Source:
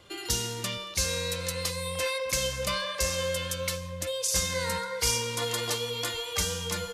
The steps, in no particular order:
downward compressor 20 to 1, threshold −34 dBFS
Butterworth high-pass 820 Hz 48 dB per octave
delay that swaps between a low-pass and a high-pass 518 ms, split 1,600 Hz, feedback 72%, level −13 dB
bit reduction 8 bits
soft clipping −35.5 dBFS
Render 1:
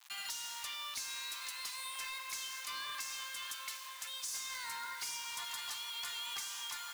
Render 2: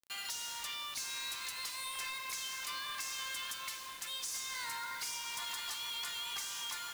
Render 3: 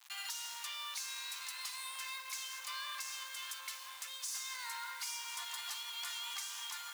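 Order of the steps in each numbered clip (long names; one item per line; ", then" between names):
downward compressor, then delay that swaps between a low-pass and a high-pass, then bit reduction, then Butterworth high-pass, then soft clipping
Butterworth high-pass, then downward compressor, then delay that swaps between a low-pass and a high-pass, then soft clipping, then bit reduction
delay that swaps between a low-pass and a high-pass, then downward compressor, then bit reduction, then soft clipping, then Butterworth high-pass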